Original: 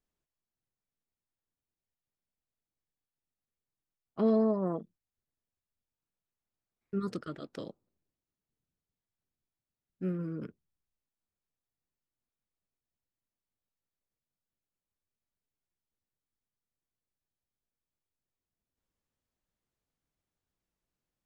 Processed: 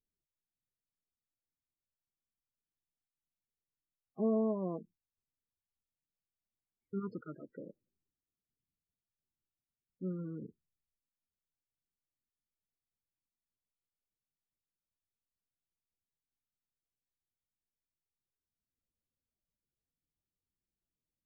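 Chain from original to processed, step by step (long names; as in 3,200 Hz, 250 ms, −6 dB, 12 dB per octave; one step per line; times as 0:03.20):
spectral peaks only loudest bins 16
level −5 dB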